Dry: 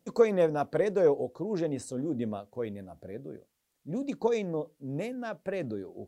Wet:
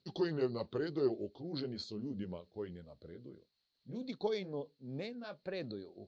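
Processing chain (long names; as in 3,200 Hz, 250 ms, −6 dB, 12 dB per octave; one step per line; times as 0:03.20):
pitch glide at a constant tempo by −4.5 semitones ending unshifted
transistor ladder low-pass 4,400 Hz, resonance 85%
level +5 dB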